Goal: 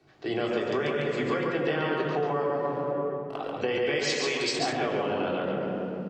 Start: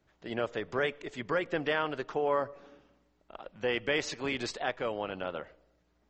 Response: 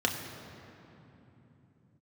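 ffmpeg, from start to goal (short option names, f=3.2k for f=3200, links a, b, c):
-filter_complex "[0:a]asettb=1/sr,asplit=3[a][b][c];[a]atrim=end=0.384[d];[b]atrim=start=0.38:end=0.81,asetpts=PTS-STARTPTS,afade=t=in:d=0.004:c=qsin,afade=t=out:st=0.426:d=0.004:c=qsin,highshelf=f=5.9k:g=9[e];[c]atrim=start=0.806[f];[d][e]acrossfade=d=0.004:c1=hsin:c2=qsin[g];[g][f]acrossfade=d=0.004:c1=qsin:c2=hsin,asettb=1/sr,asplit=3[h][i][j];[h]atrim=end=2.584[k];[i]atrim=start=2.58:end=3.38,asetpts=PTS-STARTPTS,afade=t=in:d=0.004:c=qsin,afade=t=out:st=0.796:d=0.004:c=qsin,aeval=exprs='sgn(val(0))*max(abs(val(0))-0.00168,0)':c=same[l];[j]atrim=start=3.376[m];[k][l]acrossfade=d=0.004:c1=hsin:c2=qsin[n];[n][m]acrossfade=d=0.004:c1=qsin:c2=hsin[o];[1:a]atrim=start_sample=2205,asetrate=66150,aresample=44100[p];[o][p]afir=irnorm=-1:irlink=0,acompressor=threshold=-31dB:ratio=6,asettb=1/sr,asplit=3[q][r][s];[q]atrim=end=3.994[t];[r]atrim=start=3.99:end=4.59,asetpts=PTS-STARTPTS,afade=t=in:d=0.004:c=qsin,afade=t=out:st=0.596:d=0.004:c=qsin,aemphasis=mode=production:type=bsi[u];[s]atrim=start=4.586[v];[t][u]acrossfade=d=0.004:c1=hsin:c2=qsin[w];[w][v]acrossfade=d=0.004:c1=qsin:c2=hsin,aecho=1:1:139:0.708,volume=4.5dB"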